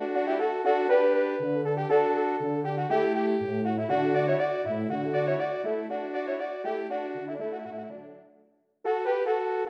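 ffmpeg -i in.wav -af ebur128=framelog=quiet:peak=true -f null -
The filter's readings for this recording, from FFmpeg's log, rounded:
Integrated loudness:
  I:         -27.4 LUFS
  Threshold: -37.8 LUFS
Loudness range:
  LRA:         7.8 LU
  Threshold: -48.1 LUFS
  LRA low:   -33.5 LUFS
  LRA high:  -25.6 LUFS
True peak:
  Peak:      -12.1 dBFS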